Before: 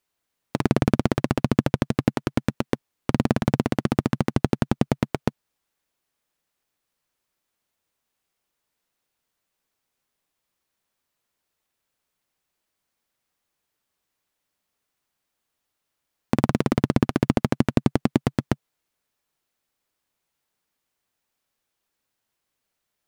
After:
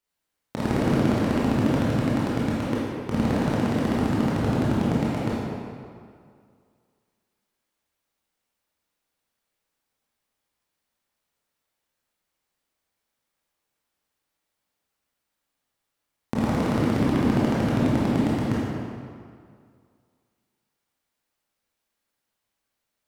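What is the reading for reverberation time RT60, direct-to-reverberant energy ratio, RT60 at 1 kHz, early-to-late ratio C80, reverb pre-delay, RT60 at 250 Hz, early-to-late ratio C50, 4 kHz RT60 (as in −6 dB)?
2.1 s, −8.0 dB, 2.2 s, −1.0 dB, 18 ms, 2.1 s, −3.5 dB, 1.5 s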